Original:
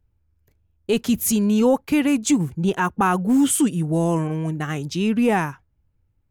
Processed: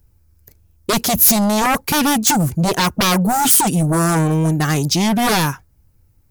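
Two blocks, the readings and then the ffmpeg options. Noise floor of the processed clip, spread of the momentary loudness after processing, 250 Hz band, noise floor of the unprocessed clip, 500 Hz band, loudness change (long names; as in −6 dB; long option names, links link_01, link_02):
−56 dBFS, 7 LU, +1.0 dB, −67 dBFS, +1.0 dB, +5.5 dB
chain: -af "aeval=exprs='0.376*sin(PI/2*3.55*val(0)/0.376)':channel_layout=same,aexciter=amount=1.6:drive=9.4:freq=4500,volume=-4dB"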